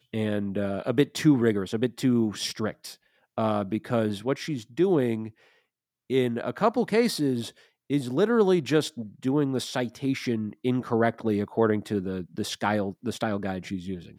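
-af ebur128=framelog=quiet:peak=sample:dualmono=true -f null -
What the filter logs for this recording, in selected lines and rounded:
Integrated loudness:
  I:         -23.7 LUFS
  Threshold: -34.0 LUFS
Loudness range:
  LRA:         2.8 LU
  Threshold: -44.0 LUFS
  LRA low:   -25.4 LUFS
  LRA high:  -22.5 LUFS
Sample peak:
  Peak:       -8.0 dBFS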